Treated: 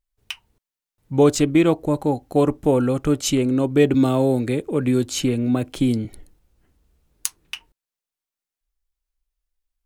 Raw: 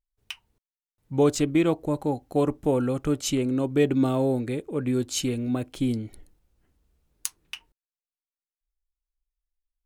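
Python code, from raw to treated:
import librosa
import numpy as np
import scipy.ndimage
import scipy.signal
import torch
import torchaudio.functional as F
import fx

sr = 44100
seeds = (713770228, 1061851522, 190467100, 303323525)

y = fx.band_squash(x, sr, depth_pct=40, at=(3.94, 6.05))
y = y * 10.0 ** (5.5 / 20.0)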